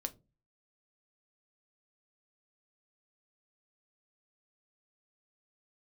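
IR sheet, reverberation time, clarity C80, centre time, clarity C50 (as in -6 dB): 0.25 s, 26.5 dB, 4 ms, 21.0 dB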